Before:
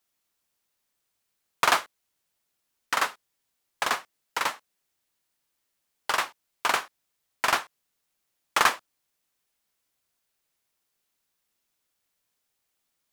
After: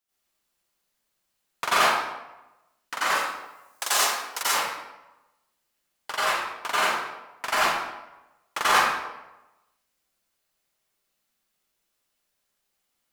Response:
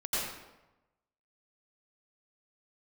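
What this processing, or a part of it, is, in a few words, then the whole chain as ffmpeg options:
bathroom: -filter_complex "[0:a]asettb=1/sr,asplit=3[a][b][c];[a]atrim=end=3.074[d];[b]atrim=start=3.07:end=4.43,asetpts=PTS-STARTPTS,afade=t=in:d=0.004:c=qsin,afade=t=out:st=1.356:d=0.004:c=qsin,bass=f=250:g=-12,treble=f=4k:g=14[e];[c]atrim=start=4.426[f];[d][e]acrossfade=d=0.004:c1=hsin:c2=qsin[g];[g][f]acrossfade=d=0.004:c1=qsin:c2=hsin[h];[1:a]atrim=start_sample=2205[i];[h][i]afir=irnorm=-1:irlink=0,volume=-4dB"

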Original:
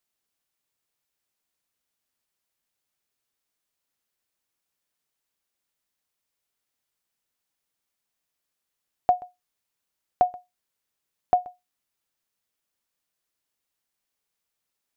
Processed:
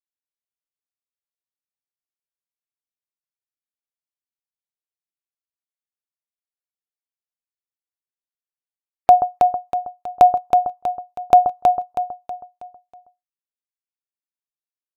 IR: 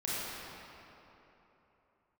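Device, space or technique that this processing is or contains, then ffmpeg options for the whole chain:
loud club master: -af "afftdn=nr=36:nf=-55,agate=range=-9dB:threshold=-50dB:ratio=16:detection=peak,acompressor=threshold=-22dB:ratio=2.5,asoftclip=type=hard:threshold=-12.5dB,alimiter=level_in=23dB:limit=-1dB:release=50:level=0:latency=1,aecho=1:1:321|642|963|1284|1605:0.596|0.244|0.1|0.0411|0.0168,volume=-1dB"

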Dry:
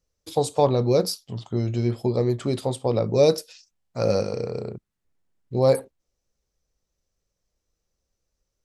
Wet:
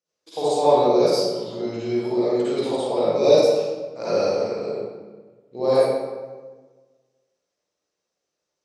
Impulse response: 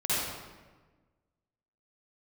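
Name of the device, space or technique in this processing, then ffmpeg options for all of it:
supermarket ceiling speaker: -filter_complex "[0:a]highpass=330,lowpass=6.9k[a];[1:a]atrim=start_sample=2205[b];[a][b]afir=irnorm=-1:irlink=0,volume=-5.5dB"

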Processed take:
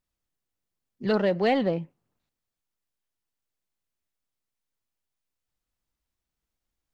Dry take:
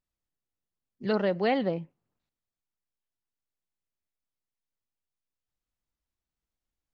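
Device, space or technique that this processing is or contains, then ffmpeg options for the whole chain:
parallel distortion: -filter_complex "[0:a]asplit=2[a][b];[b]asoftclip=type=hard:threshold=-28dB,volume=-9.5dB[c];[a][c]amix=inputs=2:normalize=0,volume=1.5dB"

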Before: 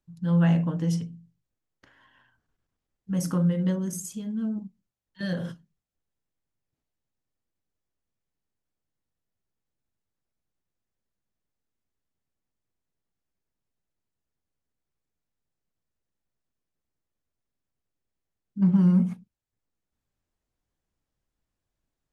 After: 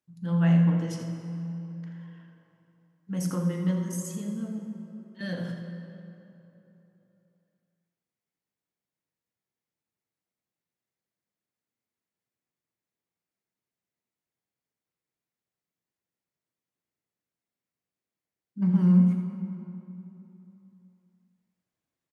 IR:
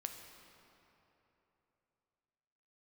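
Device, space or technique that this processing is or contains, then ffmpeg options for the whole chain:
PA in a hall: -filter_complex "[0:a]highpass=140,equalizer=f=2.1k:t=o:w=0.37:g=4.5,aecho=1:1:83:0.316[a];[1:a]atrim=start_sample=2205[b];[a][b]afir=irnorm=-1:irlink=0"

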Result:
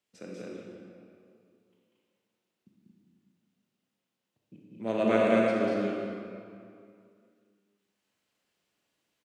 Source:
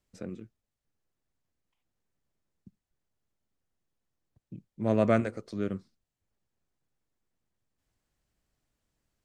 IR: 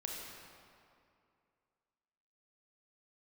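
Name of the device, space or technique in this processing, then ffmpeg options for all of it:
stadium PA: -filter_complex "[0:a]highpass=220,equalizer=f=2.9k:t=o:w=0.96:g=7,aecho=1:1:192.4|227.4:0.794|0.708[a];[1:a]atrim=start_sample=2205[b];[a][b]afir=irnorm=-1:irlink=0"

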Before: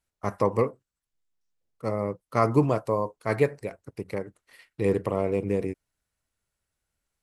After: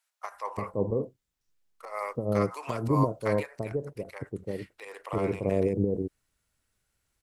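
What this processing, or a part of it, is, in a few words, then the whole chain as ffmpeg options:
de-esser from a sidechain: -filter_complex "[0:a]asplit=2[a][b];[b]highpass=f=4k:w=0.5412,highpass=f=4k:w=1.3066,apad=whole_len=318784[c];[a][c]sidechaincompress=threshold=-59dB:ratio=5:attack=1.1:release=86,acrossover=split=710[d][e];[d]adelay=340[f];[f][e]amix=inputs=2:normalize=0,asettb=1/sr,asplit=3[g][h][i];[g]atrim=end=1.854[j];[h]atrim=start=1.85:end=3.43,asetpts=PTS-STARTPTS,afade=t=in:d=0.004:c=qsin,afade=t=out:st=1.576:d=0.004:c=qsin,adynamicequalizer=threshold=0.00447:dfrequency=1500:dqfactor=0.7:tfrequency=1500:tqfactor=0.7:attack=5:release=100:ratio=0.375:range=2.5:mode=boostabove:tftype=highshelf[k];[i]atrim=start=3.426[l];[j][k]acrossfade=d=0.004:c1=hsin:c2=qsin[m];[m][l]acrossfade=d=0.004:c1=qsin:c2=hsin,volume=5.5dB"

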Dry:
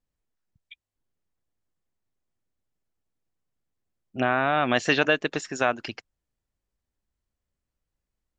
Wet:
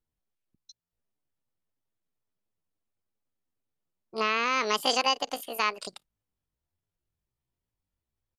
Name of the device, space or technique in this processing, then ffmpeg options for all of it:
chipmunk voice: -af "asetrate=76340,aresample=44100,atempo=0.577676,volume=-3.5dB"

